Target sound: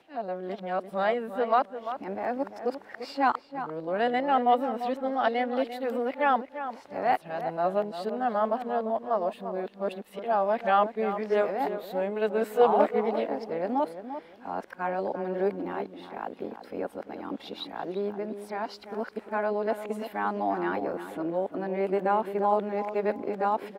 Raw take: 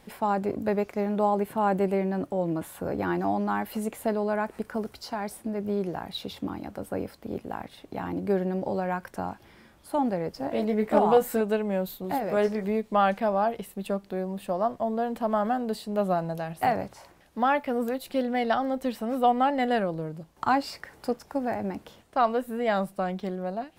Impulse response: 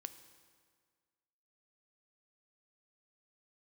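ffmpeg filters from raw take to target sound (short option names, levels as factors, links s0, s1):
-filter_complex "[0:a]areverse,acrossover=split=240 4500:gain=0.126 1 0.224[s0][s1][s2];[s0][s1][s2]amix=inputs=3:normalize=0,asplit=2[s3][s4];[s4]adelay=345,lowpass=f=2000:p=1,volume=0.316,asplit=2[s5][s6];[s6]adelay=345,lowpass=f=2000:p=1,volume=0.24,asplit=2[s7][s8];[s8]adelay=345,lowpass=f=2000:p=1,volume=0.24[s9];[s3][s5][s7][s9]amix=inputs=4:normalize=0"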